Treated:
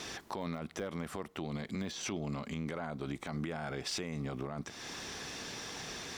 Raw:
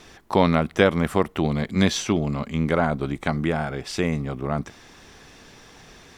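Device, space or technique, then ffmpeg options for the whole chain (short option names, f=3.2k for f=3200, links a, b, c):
broadcast voice chain: -af "highpass=f=120:p=1,deesser=0.8,acompressor=threshold=-37dB:ratio=4,equalizer=f=5.3k:t=o:w=1.5:g=5,alimiter=level_in=7dB:limit=-24dB:level=0:latency=1:release=31,volume=-7dB,volume=3.5dB"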